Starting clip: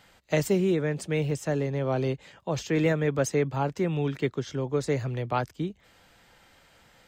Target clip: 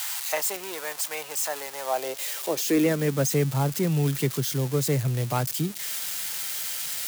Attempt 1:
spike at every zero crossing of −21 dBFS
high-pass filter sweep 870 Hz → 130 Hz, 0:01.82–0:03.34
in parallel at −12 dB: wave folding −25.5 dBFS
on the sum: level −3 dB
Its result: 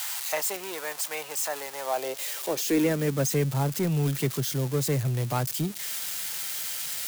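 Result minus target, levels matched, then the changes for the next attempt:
wave folding: distortion +30 dB
change: wave folding −14.5 dBFS

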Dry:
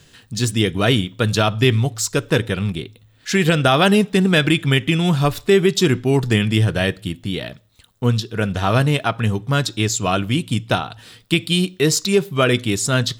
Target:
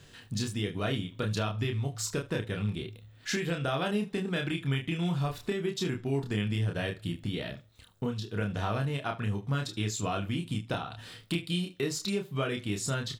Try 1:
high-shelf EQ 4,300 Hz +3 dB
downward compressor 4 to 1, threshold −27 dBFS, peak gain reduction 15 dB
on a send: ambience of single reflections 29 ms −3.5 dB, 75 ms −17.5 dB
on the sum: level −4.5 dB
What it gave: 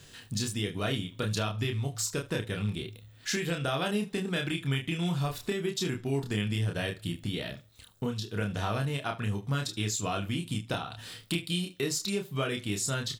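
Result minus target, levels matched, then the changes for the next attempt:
8,000 Hz band +3.5 dB
change: high-shelf EQ 4,300 Hz −5.5 dB

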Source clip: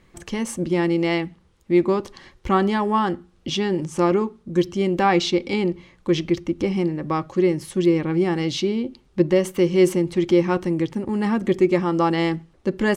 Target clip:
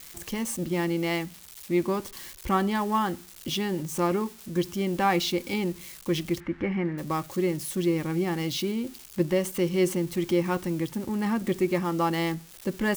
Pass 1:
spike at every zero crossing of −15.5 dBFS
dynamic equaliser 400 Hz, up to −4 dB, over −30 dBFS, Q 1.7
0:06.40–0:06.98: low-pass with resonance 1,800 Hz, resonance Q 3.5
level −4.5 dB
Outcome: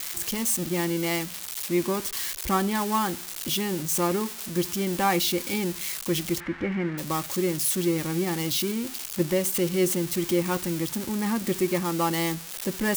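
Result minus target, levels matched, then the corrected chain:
spike at every zero crossing: distortion +12 dB
spike at every zero crossing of −27.5 dBFS
dynamic equaliser 400 Hz, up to −4 dB, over −30 dBFS, Q 1.7
0:06.40–0:06.98: low-pass with resonance 1,800 Hz, resonance Q 3.5
level −4.5 dB

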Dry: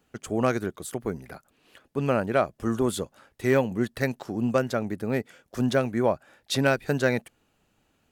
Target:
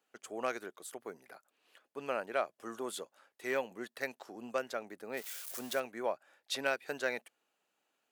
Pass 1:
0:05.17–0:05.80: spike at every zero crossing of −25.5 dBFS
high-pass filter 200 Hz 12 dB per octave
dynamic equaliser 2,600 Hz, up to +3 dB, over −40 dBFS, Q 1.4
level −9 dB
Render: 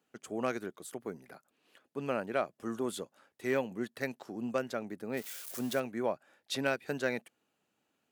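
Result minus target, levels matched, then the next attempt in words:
250 Hz band +6.5 dB
0:05.17–0:05.80: spike at every zero crossing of −25.5 dBFS
high-pass filter 480 Hz 12 dB per octave
dynamic equaliser 2,600 Hz, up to +3 dB, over −40 dBFS, Q 1.4
level −9 dB

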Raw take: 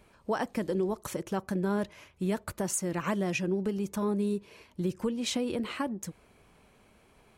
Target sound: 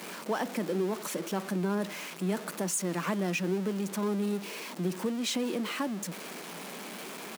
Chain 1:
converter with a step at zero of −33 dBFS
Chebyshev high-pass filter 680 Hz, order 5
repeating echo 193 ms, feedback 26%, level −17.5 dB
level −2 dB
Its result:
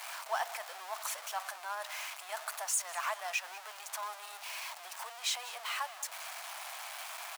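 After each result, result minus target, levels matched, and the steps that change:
500 Hz band −8.0 dB; echo-to-direct +9.5 dB
change: Chebyshev high-pass filter 170 Hz, order 5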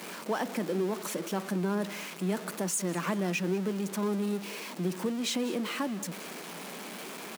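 echo-to-direct +9.5 dB
change: repeating echo 193 ms, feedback 26%, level −27 dB

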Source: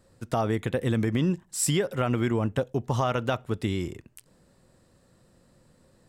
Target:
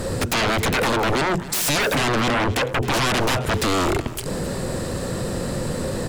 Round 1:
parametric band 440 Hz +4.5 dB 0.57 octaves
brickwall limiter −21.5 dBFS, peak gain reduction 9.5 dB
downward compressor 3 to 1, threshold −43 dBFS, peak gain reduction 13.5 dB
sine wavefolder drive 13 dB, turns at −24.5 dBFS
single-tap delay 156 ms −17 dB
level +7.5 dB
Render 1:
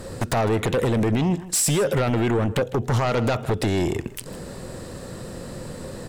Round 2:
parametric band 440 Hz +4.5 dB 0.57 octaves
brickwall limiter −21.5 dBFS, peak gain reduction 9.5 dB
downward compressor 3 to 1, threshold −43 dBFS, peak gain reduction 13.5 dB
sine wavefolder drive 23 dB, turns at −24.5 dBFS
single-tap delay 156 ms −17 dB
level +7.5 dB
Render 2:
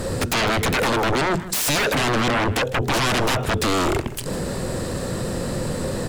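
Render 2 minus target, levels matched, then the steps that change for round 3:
echo 110 ms early
change: single-tap delay 266 ms −17 dB

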